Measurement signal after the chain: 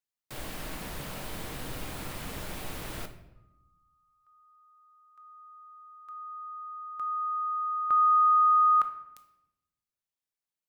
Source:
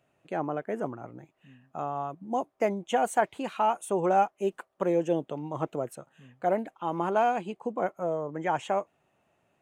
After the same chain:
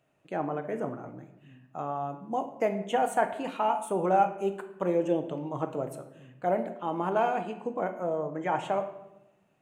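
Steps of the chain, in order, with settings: dynamic EQ 6100 Hz, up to -5 dB, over -53 dBFS, Q 1.4; shoebox room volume 330 m³, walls mixed, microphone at 0.53 m; gain -1.5 dB

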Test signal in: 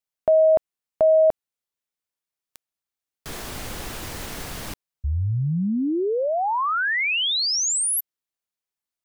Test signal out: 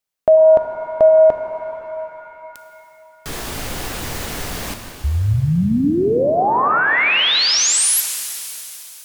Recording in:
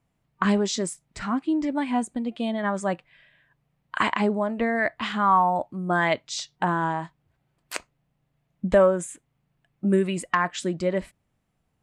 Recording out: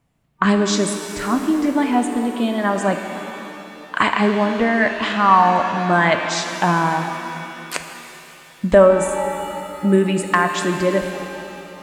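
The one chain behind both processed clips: shimmer reverb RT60 3 s, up +7 st, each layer -8 dB, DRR 5.5 dB; gain +6 dB

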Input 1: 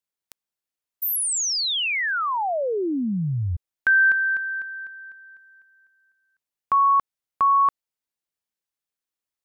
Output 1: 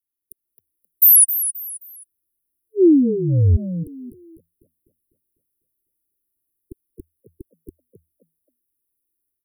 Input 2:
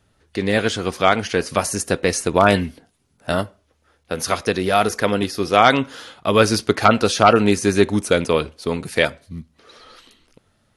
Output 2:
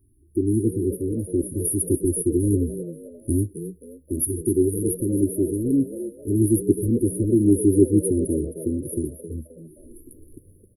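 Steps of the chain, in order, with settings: AGC gain up to 9 dB; brick-wall FIR band-stop 390–9500 Hz; fixed phaser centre 680 Hz, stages 6; on a send: frequency-shifting echo 0.264 s, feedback 32%, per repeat +80 Hz, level -11.5 dB; on the sum: gain +6 dB

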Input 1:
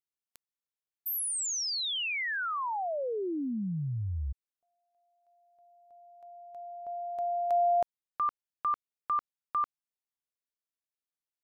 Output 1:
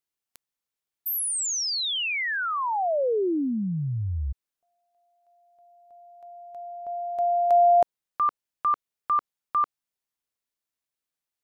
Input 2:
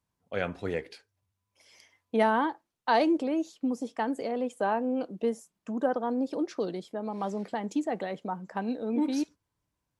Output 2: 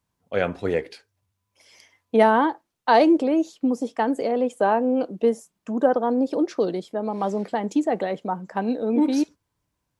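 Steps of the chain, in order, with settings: dynamic EQ 480 Hz, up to +4 dB, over -37 dBFS, Q 0.7; gain +5 dB

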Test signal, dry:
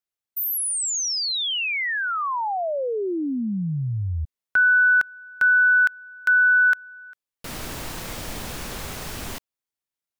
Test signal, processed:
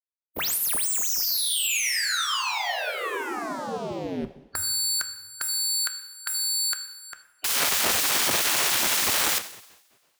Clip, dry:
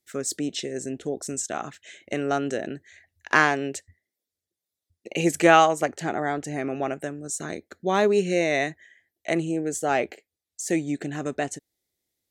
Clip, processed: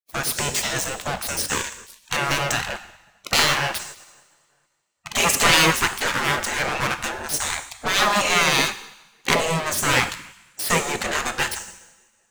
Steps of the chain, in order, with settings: sample leveller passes 5; two-slope reverb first 0.91 s, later 2.3 s, from -21 dB, DRR 9 dB; spectral gate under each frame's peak -15 dB weak; gain -1 dB

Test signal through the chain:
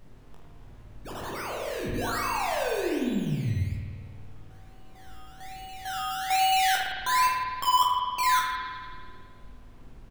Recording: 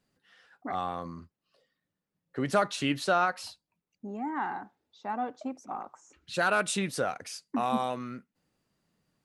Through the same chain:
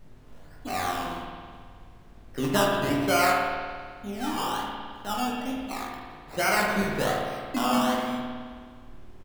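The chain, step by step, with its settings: high shelf 3700 Hz -9.5 dB; decimation with a swept rate 17×, swing 60% 1.2 Hz; added noise brown -51 dBFS; reverse bouncing-ball echo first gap 20 ms, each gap 1.25×, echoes 5; spring tank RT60 1.8 s, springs 53 ms, chirp 50 ms, DRR 0 dB

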